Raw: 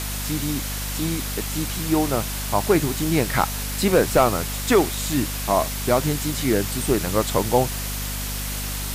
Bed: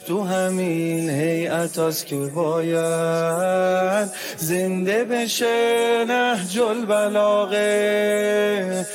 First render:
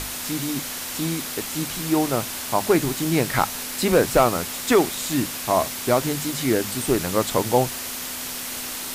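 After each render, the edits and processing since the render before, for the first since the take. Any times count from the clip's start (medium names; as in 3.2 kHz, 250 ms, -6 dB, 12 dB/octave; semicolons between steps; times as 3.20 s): hum notches 50/100/150/200 Hz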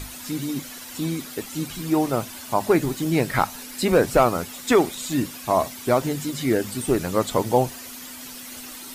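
noise reduction 11 dB, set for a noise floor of -32 dBFS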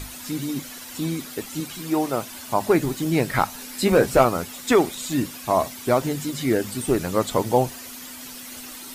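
1.60–2.32 s: bass shelf 150 Hz -10.5 dB; 3.59–4.25 s: doubling 15 ms -7 dB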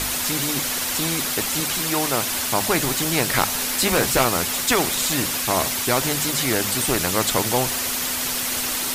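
spectrum-flattening compressor 2:1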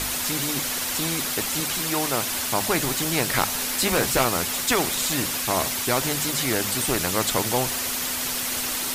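trim -2.5 dB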